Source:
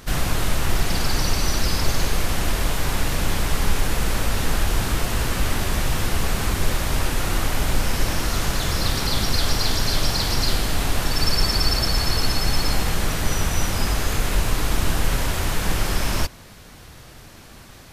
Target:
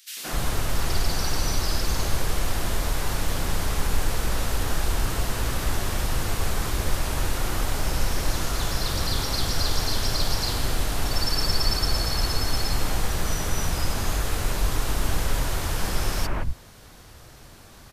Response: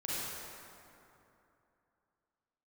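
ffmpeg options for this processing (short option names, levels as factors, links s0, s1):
-filter_complex "[0:a]acrossover=split=200|2400[s0][s1][s2];[s1]adelay=170[s3];[s0]adelay=260[s4];[s4][s3][s2]amix=inputs=3:normalize=0,volume=0.708"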